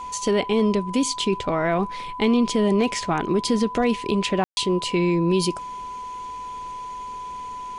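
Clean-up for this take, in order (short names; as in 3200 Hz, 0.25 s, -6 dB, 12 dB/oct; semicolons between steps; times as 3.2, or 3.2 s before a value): clip repair -11.5 dBFS; notch 1000 Hz, Q 30; room tone fill 4.44–4.57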